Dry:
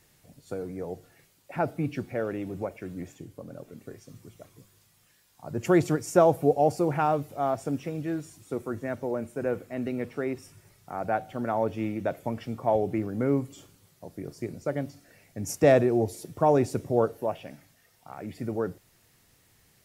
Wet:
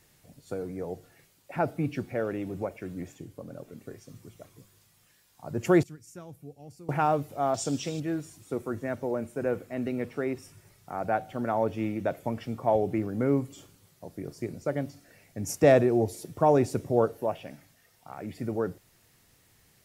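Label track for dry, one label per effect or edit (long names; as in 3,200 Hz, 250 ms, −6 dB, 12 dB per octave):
5.830000	6.890000	guitar amp tone stack bass-middle-treble 6-0-2
7.540000	8.000000	flat-topped bell 5,000 Hz +15.5 dB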